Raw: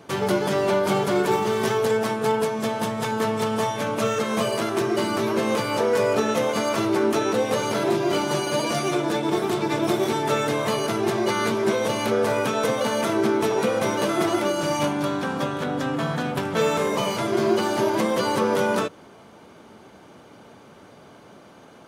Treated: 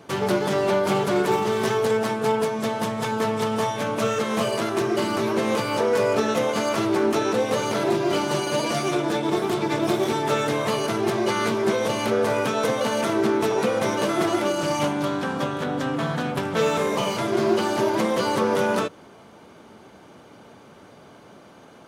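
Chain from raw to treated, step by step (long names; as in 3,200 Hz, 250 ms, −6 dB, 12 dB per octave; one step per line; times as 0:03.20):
highs frequency-modulated by the lows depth 0.14 ms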